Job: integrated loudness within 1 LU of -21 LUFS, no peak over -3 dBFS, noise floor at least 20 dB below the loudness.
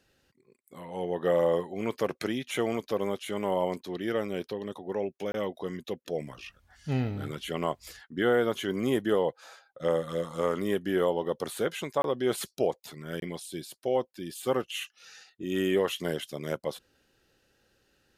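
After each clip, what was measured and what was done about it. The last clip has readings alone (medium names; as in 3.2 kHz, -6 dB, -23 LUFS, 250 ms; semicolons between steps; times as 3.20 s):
dropouts 3; longest dropout 22 ms; loudness -31.0 LUFS; peak level -13.5 dBFS; loudness target -21.0 LUFS
-> interpolate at 5.32/12.02/13.20 s, 22 ms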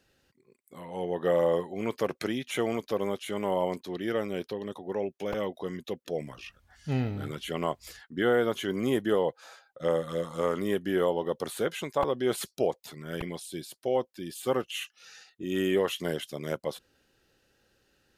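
dropouts 0; loudness -31.0 LUFS; peak level -13.5 dBFS; loudness target -21.0 LUFS
-> trim +10 dB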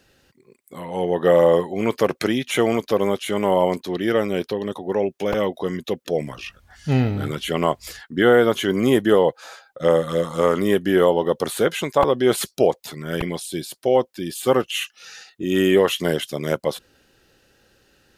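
loudness -21.0 LUFS; peak level -3.5 dBFS; noise floor -61 dBFS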